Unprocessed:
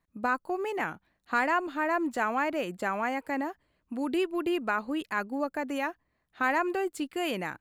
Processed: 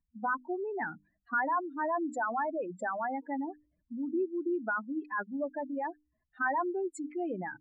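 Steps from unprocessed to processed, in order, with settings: spectral contrast enhancement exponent 3.5; hum notches 50/100/150/200/250/300 Hz; trim -2.5 dB

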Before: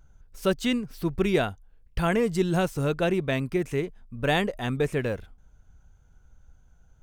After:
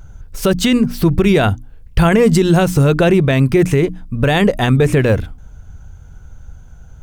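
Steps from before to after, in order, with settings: peaking EQ 92 Hz +6.5 dB 2 oct; hum notches 60/120/180/240/300 Hz; loudness maximiser +19 dB; trim -2.5 dB

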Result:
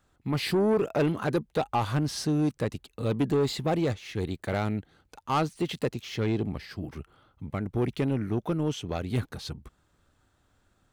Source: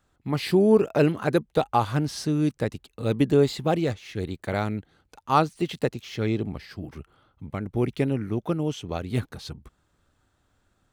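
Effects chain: in parallel at -3 dB: peak limiter -17.5 dBFS, peak gain reduction 10 dB; on the sum: saturation -15 dBFS, distortion -13 dB; trim -4 dB

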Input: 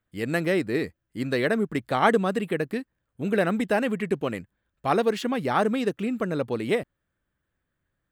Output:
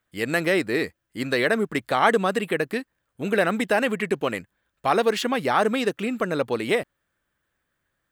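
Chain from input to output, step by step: bass shelf 360 Hz -10.5 dB; in parallel at +2 dB: peak limiter -19 dBFS, peak gain reduction 11.5 dB

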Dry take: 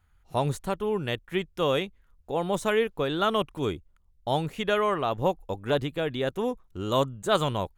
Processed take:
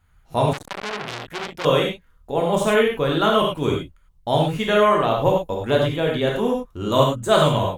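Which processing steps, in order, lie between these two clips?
gated-style reverb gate 130 ms flat, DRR -1.5 dB; 0.53–1.65 s: transformer saturation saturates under 3.6 kHz; trim +3.5 dB

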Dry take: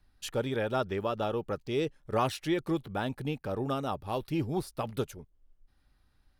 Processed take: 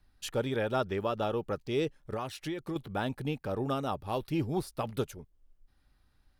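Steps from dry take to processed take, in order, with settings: 1.99–2.76 s: compression 6:1, threshold -33 dBFS, peak gain reduction 9.5 dB

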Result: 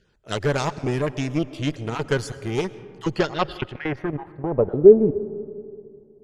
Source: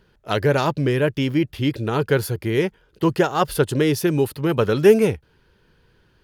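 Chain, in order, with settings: random holes in the spectrogram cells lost 21%; Chebyshev shaper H 5 -33 dB, 6 -28 dB, 7 -28 dB, 8 -19 dB, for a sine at -2.5 dBFS; low-pass sweep 7.4 kHz -> 280 Hz, 2.97–5.12 s; on a send at -16 dB: reverberation RT60 2.4 s, pre-delay 75 ms; 3.61–4.52 s: on the sum: level held to a coarse grid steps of 10 dB; trim -4 dB

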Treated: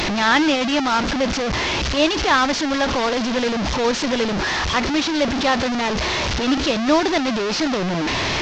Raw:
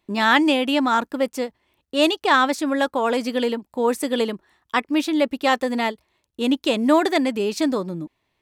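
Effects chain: one-bit delta coder 32 kbps, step -15.5 dBFS

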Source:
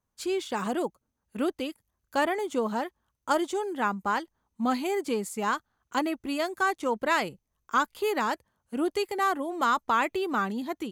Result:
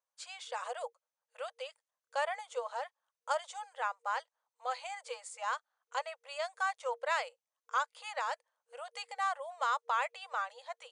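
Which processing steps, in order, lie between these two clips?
FFT band-pass 470–9900 Hz; trim -7 dB

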